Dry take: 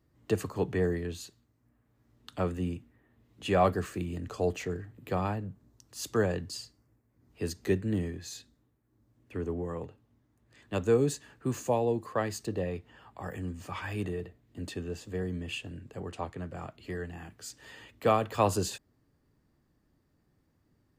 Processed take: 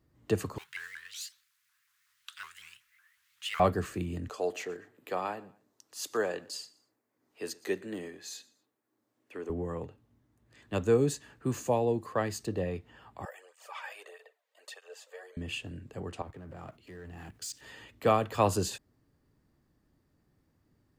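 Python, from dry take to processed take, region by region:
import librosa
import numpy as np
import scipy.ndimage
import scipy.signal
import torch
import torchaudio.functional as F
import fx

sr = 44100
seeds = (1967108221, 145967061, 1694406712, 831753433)

y = fx.chain(x, sr, fx.law_mismatch(coded='mu'),
    fx.cheby2_highpass(hz=710.0, order=4, stop_db=40),
    fx.vibrato_shape(shape='saw_up', rate_hz=5.4, depth_cents=250.0), at=(0.58, 3.6))
y = fx.chain(y, sr, fx.highpass(hz=410.0, slope=12),
    fx.echo_feedback(ms=119, feedback_pct=32, wet_db=-22), at=(4.3, 9.5))
y = fx.chain(y, sr, fx.steep_highpass(hz=500.0, slope=48),
    fx.flanger_cancel(hz=1.6, depth_ms=3.1), at=(13.25, 15.37))
y = fx.chain(y, sr, fx.law_mismatch(coded='mu'),
    fx.level_steps(step_db=15),
    fx.band_widen(depth_pct=70), at=(16.22, 17.61))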